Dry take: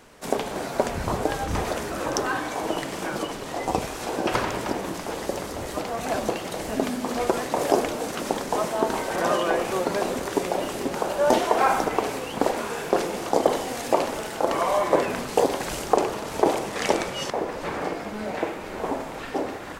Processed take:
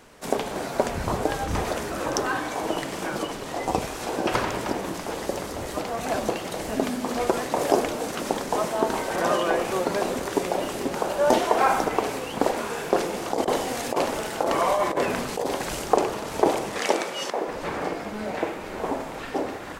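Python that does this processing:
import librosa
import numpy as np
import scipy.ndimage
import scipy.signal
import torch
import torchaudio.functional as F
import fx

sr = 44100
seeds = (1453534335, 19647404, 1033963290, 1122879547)

y = fx.over_compress(x, sr, threshold_db=-22.0, ratio=-0.5, at=(13.3, 15.47))
y = fx.highpass(y, sr, hz=270.0, slope=12, at=(16.8, 17.48))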